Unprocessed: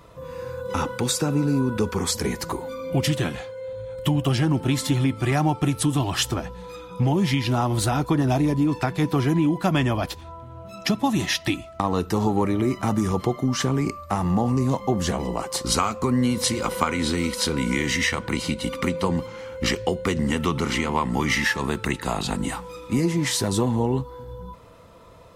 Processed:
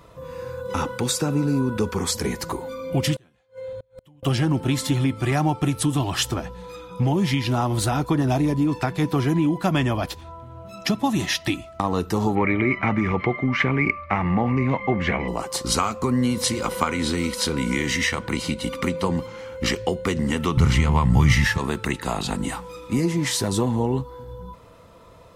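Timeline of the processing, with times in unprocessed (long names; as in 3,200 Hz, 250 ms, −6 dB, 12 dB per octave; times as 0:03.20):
0:03.16–0:04.23: gate with flip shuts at −27 dBFS, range −32 dB
0:12.35–0:15.28: low-pass with resonance 2,200 Hz, resonance Q 8.8
0:20.57–0:21.58: low shelf with overshoot 180 Hz +14 dB, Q 1.5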